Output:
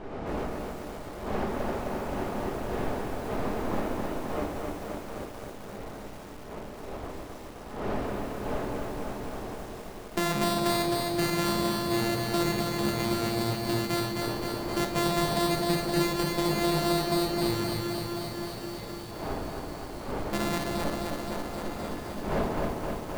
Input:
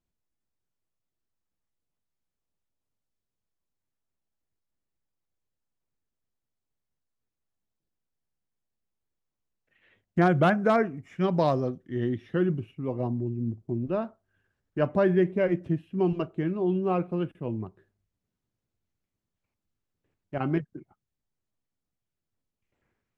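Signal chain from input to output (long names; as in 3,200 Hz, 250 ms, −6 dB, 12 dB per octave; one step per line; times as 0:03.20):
samples sorted by size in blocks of 128 samples
wind on the microphone 610 Hz −42 dBFS
parametric band 150 Hz −4.5 dB 0.61 octaves
in parallel at −0.5 dB: brickwall limiter −21.5 dBFS, peak gain reduction 10.5 dB
on the sum: downward compressor 2 to 1, threshold −31 dBFS, peak gain reduction 9 dB
feedback delay with all-pass diffusion 1,458 ms, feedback 46%, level −15.5 dB
on a send at −5 dB: convolution reverb RT60 0.85 s, pre-delay 5 ms
on the sum: feedback echo at a low word length 261 ms, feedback 80%, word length 8 bits, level −3.5 dB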